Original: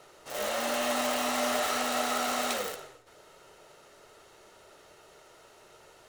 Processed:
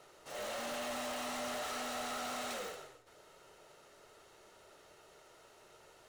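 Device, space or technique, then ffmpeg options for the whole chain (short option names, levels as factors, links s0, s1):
saturation between pre-emphasis and de-emphasis: -af "highshelf=f=10000:g=11,asoftclip=type=tanh:threshold=0.0282,highshelf=f=10000:g=-11,volume=0.562"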